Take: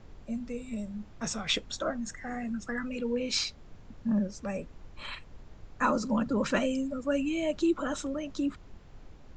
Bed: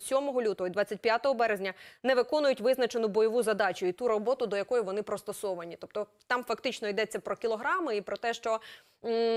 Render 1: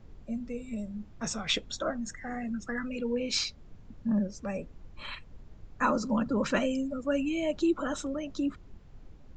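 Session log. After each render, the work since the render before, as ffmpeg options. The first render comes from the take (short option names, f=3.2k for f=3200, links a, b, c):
-af "afftdn=nr=6:nf=-51"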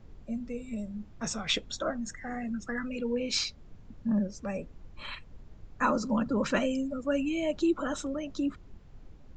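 -af anull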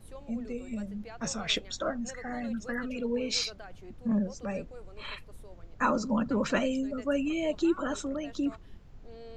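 -filter_complex "[1:a]volume=-20dB[a];[0:a][a]amix=inputs=2:normalize=0"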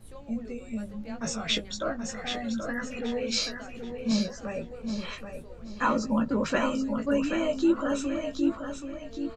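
-filter_complex "[0:a]asplit=2[a][b];[b]adelay=18,volume=-5dB[c];[a][c]amix=inputs=2:normalize=0,aecho=1:1:779|1558|2337|3116:0.447|0.134|0.0402|0.0121"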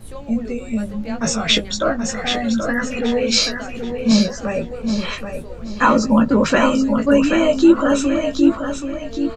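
-af "volume=12dB,alimiter=limit=-2dB:level=0:latency=1"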